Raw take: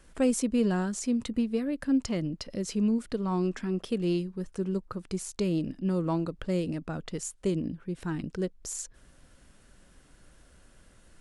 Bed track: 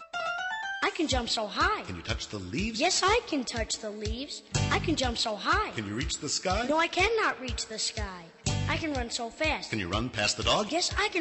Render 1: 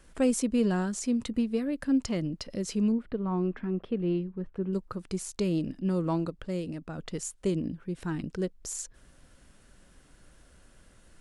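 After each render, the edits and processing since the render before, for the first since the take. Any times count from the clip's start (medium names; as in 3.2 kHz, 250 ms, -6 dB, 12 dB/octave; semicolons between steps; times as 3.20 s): 2.92–4.73 s: distance through air 470 m; 6.30–6.98 s: gain -4 dB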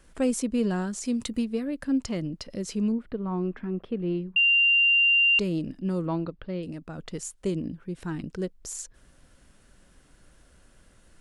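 1.05–1.45 s: treble shelf 3.8 kHz +10 dB; 4.36–5.39 s: bleep 2.78 kHz -17 dBFS; 6.06–6.63 s: inverse Chebyshev low-pass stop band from 8 kHz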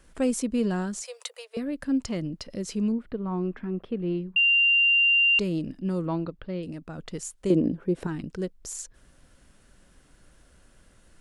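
1.02–1.57 s: steep high-pass 480 Hz 72 dB/octave; 7.50–8.07 s: peaking EQ 470 Hz +13 dB 2.4 oct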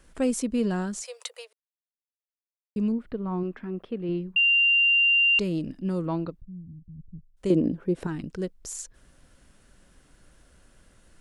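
1.53–2.76 s: mute; 3.43–4.09 s: bass shelf 170 Hz -7 dB; 6.41–7.37 s: inverse Chebyshev low-pass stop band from 970 Hz, stop band 80 dB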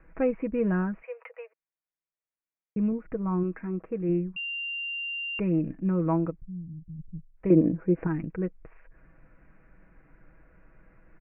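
steep low-pass 2.5 kHz 96 dB/octave; comb 6.2 ms, depth 50%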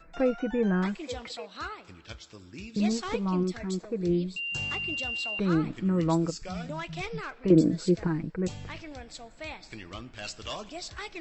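add bed track -11.5 dB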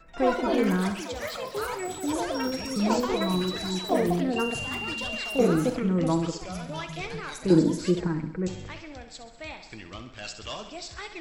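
on a send: thinning echo 65 ms, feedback 60%, high-pass 160 Hz, level -10 dB; on the sum: ever faster or slower copies 82 ms, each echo +6 st, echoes 3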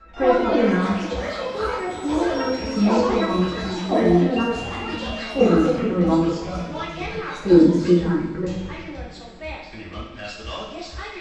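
distance through air 130 m; two-slope reverb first 0.53 s, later 3.2 s, from -19 dB, DRR -6 dB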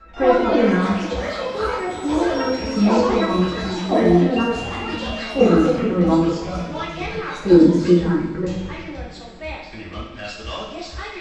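trim +2 dB; peak limiter -2 dBFS, peak gain reduction 2 dB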